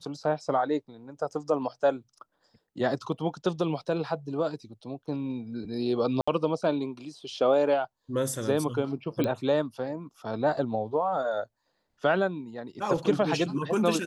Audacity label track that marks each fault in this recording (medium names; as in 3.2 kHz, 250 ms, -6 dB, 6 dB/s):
6.210000	6.280000	dropout 65 ms
9.240000	9.240000	pop -15 dBFS